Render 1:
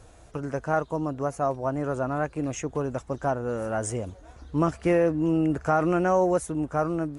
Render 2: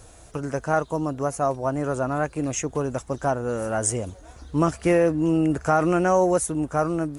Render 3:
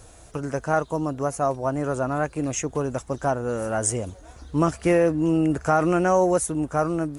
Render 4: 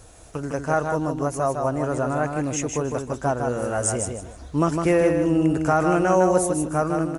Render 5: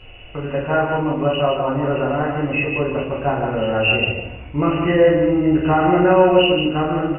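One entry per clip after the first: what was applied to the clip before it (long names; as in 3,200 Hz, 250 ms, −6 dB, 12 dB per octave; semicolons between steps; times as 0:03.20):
high-shelf EQ 5,700 Hz +11 dB; level +2.5 dB
no processing that can be heard
repeating echo 156 ms, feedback 24%, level −5 dB
hearing-aid frequency compression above 1,900 Hz 4 to 1; rectangular room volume 68 cubic metres, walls mixed, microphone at 1 metre; every ending faded ahead of time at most 370 dB per second; level −1 dB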